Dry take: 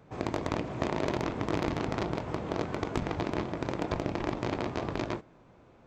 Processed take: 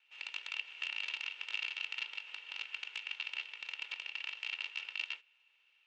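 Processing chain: comb filter that takes the minimum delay 2.2 ms; ladder band-pass 2.9 kHz, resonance 80%; trim +6.5 dB

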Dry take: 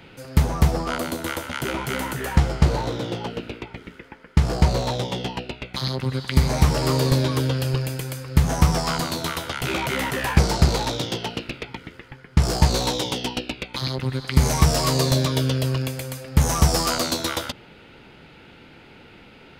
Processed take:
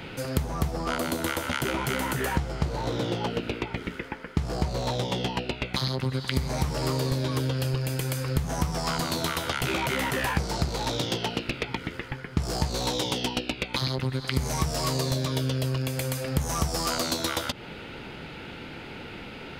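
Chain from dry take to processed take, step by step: compression 6:1, threshold -32 dBFS, peak gain reduction 20 dB; trim +7 dB

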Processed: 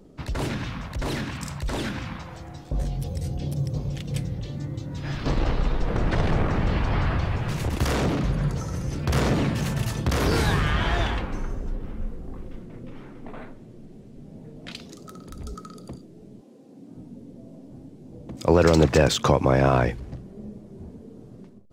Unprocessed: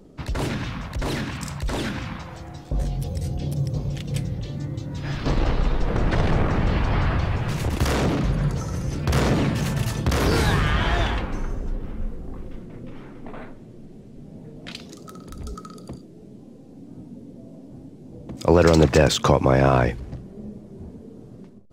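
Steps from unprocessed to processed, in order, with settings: 16.40–16.94 s: high-pass 350 Hz -> 130 Hz 12 dB/octave; trim -2 dB

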